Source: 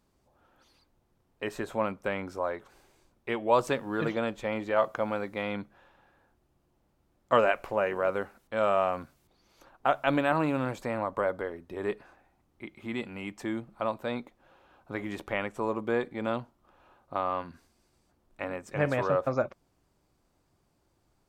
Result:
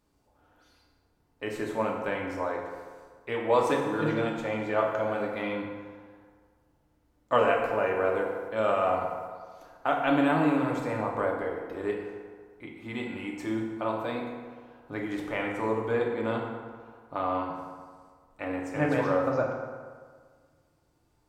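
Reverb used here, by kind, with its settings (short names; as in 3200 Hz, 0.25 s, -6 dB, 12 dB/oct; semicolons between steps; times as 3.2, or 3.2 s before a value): FDN reverb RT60 1.7 s, low-frequency decay 0.9×, high-frequency decay 0.6×, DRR -1.5 dB; gain -2.5 dB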